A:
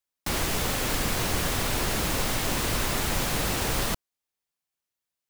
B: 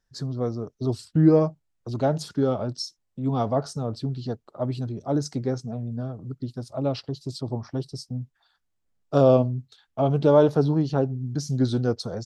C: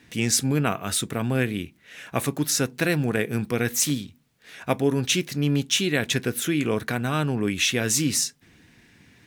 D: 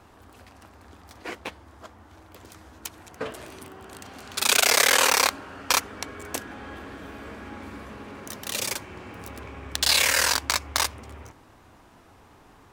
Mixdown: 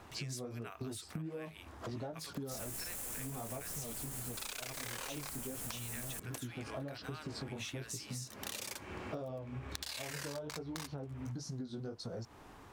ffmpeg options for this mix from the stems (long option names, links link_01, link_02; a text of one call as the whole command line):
ffmpeg -i stem1.wav -i stem2.wav -i stem3.wav -i stem4.wav -filter_complex "[0:a]highshelf=frequency=6100:width_type=q:width=1.5:gain=12,alimiter=limit=-17dB:level=0:latency=1,adelay=2250,volume=-4.5dB[link_01];[1:a]flanger=delay=16.5:depth=5.3:speed=1.4,volume=0.5dB[link_02];[2:a]highpass=840,volume=-13dB,asplit=2[link_03][link_04];[3:a]volume=-2dB[link_05];[link_04]apad=whole_len=561092[link_06];[link_05][link_06]sidechaincompress=threshold=-48dB:ratio=10:attack=36:release=223[link_07];[link_01][link_02][link_07]amix=inputs=3:normalize=0,acompressor=threshold=-29dB:ratio=3,volume=0dB[link_08];[link_03][link_08]amix=inputs=2:normalize=0,acompressor=threshold=-39dB:ratio=12" out.wav